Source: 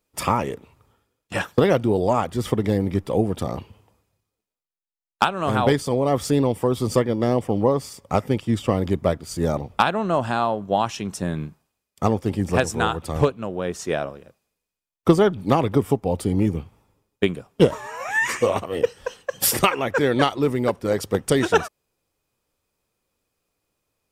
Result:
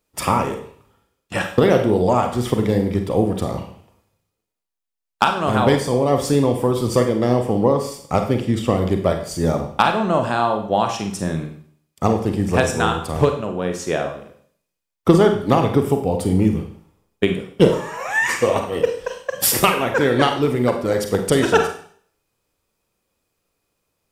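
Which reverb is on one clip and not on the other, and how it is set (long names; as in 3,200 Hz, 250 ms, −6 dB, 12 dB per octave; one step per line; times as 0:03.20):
four-comb reverb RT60 0.54 s, combs from 33 ms, DRR 5 dB
level +2 dB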